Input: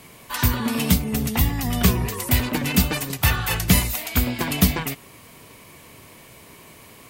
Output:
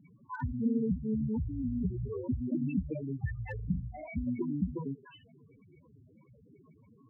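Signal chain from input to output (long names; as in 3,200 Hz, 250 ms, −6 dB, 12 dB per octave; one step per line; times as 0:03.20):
floating-point word with a short mantissa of 2 bits
downward compressor 16 to 1, threshold −20 dBFS, peak gain reduction 10.5 dB
dynamic equaliser 420 Hz, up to +5 dB, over −45 dBFS, Q 1.5
gate on every frequency bin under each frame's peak −30 dB strong
high-frequency loss of the air 220 metres
echo through a band-pass that steps 297 ms, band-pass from 1,400 Hz, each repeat 1.4 octaves, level −9 dB
spectral peaks only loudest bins 4
notch comb filter 1,200 Hz
0:03.55–0:04.08: flutter between parallel walls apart 6.9 metres, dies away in 0.32 s
slew-rate limiting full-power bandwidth 31 Hz
level −2 dB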